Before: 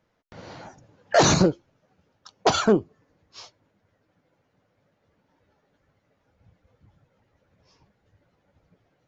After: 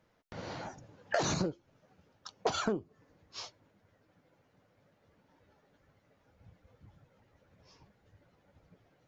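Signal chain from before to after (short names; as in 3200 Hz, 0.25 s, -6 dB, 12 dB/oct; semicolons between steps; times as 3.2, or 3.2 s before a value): compressor 8:1, threshold -29 dBFS, peak gain reduction 15.5 dB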